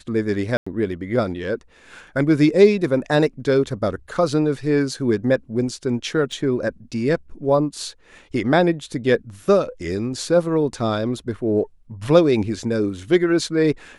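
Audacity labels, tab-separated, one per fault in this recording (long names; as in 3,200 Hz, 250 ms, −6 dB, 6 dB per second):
0.570000	0.670000	drop-out 95 ms
6.320000	6.320000	drop-out 3.3 ms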